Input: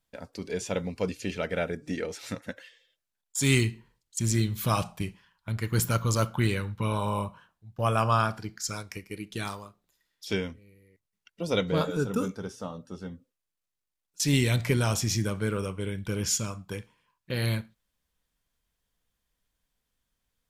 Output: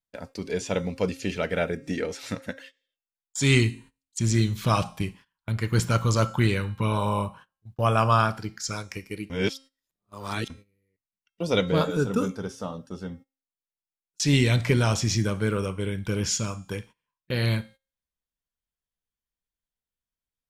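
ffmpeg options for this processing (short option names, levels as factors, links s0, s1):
-filter_complex "[0:a]asplit=3[s0][s1][s2];[s0]atrim=end=9.302[s3];[s1]atrim=start=9.298:end=10.502,asetpts=PTS-STARTPTS,areverse[s4];[s2]atrim=start=10.498[s5];[s3][s4]acrossfade=d=0.004:c1=hsin:c2=hsin[s6];[s6][s5]acrossfade=d=0.004:c1=hsin:c2=hsin,bandreject=f=267.8:t=h:w=4,bandreject=f=535.6:t=h:w=4,bandreject=f=803.4:t=h:w=4,bandreject=f=1071.2:t=h:w=4,bandreject=f=1339:t=h:w=4,bandreject=f=1606.8:t=h:w=4,bandreject=f=1874.6:t=h:w=4,bandreject=f=2142.4:t=h:w=4,bandreject=f=2410.2:t=h:w=4,bandreject=f=2678:t=h:w=4,bandreject=f=2945.8:t=h:w=4,bandreject=f=3213.6:t=h:w=4,bandreject=f=3481.4:t=h:w=4,bandreject=f=3749.2:t=h:w=4,bandreject=f=4017:t=h:w=4,bandreject=f=4284.8:t=h:w=4,bandreject=f=4552.6:t=h:w=4,bandreject=f=4820.4:t=h:w=4,bandreject=f=5088.2:t=h:w=4,bandreject=f=5356:t=h:w=4,bandreject=f=5623.8:t=h:w=4,bandreject=f=5891.6:t=h:w=4,bandreject=f=6159.4:t=h:w=4,bandreject=f=6427.2:t=h:w=4,bandreject=f=6695:t=h:w=4,bandreject=f=6962.8:t=h:w=4,bandreject=f=7230.6:t=h:w=4,bandreject=f=7498.4:t=h:w=4,bandreject=f=7766.2:t=h:w=4,bandreject=f=8034:t=h:w=4,bandreject=f=8301.8:t=h:w=4,bandreject=f=8569.6:t=h:w=4,bandreject=f=8837.4:t=h:w=4,bandreject=f=9105.2:t=h:w=4,bandreject=f=9373:t=h:w=4,bandreject=f=9640.8:t=h:w=4,bandreject=f=9908.6:t=h:w=4,bandreject=f=10176.4:t=h:w=4,agate=range=0.126:threshold=0.00355:ratio=16:detection=peak,acrossover=split=7500[s7][s8];[s8]acompressor=threshold=0.00224:ratio=4:attack=1:release=60[s9];[s7][s9]amix=inputs=2:normalize=0,volume=1.5"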